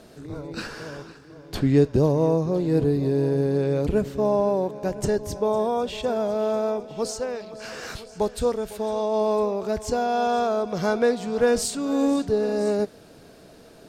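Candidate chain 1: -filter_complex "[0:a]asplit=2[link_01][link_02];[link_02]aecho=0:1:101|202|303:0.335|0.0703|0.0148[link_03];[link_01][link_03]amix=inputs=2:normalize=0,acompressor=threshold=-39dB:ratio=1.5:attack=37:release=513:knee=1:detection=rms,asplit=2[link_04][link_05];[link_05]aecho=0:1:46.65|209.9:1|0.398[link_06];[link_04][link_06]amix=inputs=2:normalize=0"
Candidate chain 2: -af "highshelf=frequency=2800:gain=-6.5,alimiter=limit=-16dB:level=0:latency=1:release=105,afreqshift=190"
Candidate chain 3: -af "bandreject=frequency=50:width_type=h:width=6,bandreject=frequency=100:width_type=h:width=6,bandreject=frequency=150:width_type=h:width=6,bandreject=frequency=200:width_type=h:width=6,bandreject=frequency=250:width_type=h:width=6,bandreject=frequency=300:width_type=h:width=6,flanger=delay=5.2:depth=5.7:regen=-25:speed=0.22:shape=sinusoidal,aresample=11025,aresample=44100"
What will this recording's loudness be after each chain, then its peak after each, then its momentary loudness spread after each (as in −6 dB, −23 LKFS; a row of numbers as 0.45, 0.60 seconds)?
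−27.5, −25.5, −27.5 LKFS; −12.5, −12.5, −13.0 dBFS; 11, 12, 13 LU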